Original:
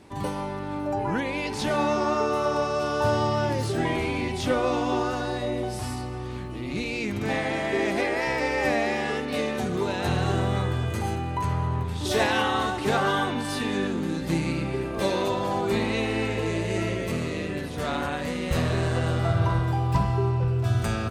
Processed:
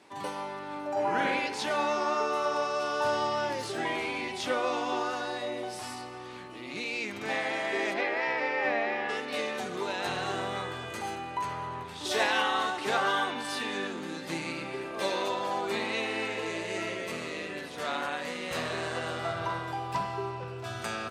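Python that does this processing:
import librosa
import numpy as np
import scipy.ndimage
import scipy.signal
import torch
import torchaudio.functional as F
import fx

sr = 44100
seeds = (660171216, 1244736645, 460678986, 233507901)

y = fx.reverb_throw(x, sr, start_s=0.91, length_s=0.4, rt60_s=0.93, drr_db=-3.0)
y = fx.lowpass(y, sr, hz=fx.line((7.93, 4000.0), (9.08, 2400.0)), slope=12, at=(7.93, 9.08), fade=0.02)
y = fx.weighting(y, sr, curve='A')
y = y * librosa.db_to_amplitude(-2.5)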